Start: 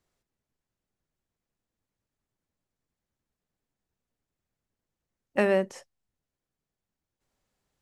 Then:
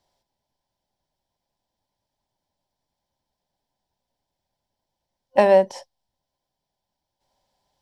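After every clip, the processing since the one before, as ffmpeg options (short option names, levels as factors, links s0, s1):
-af "superequalizer=8b=2.82:9b=3.98:10b=0.631:13b=2.24:14b=2.51,volume=1.26"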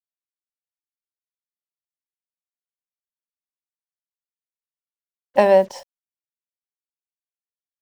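-af "acrusher=bits=7:mix=0:aa=0.5,volume=1.12"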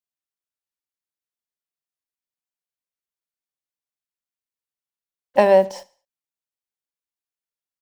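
-af "aecho=1:1:73|146|219:0.0891|0.0348|0.0136"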